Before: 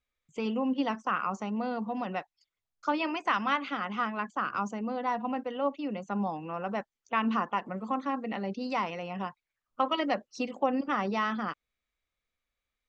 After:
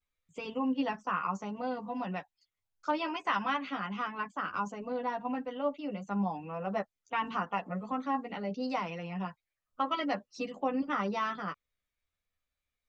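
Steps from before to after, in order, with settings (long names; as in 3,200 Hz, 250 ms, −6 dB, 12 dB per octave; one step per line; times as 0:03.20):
pitch vibrato 0.74 Hz 40 cents
multi-voice chorus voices 6, 0.27 Hz, delay 11 ms, depth 1.1 ms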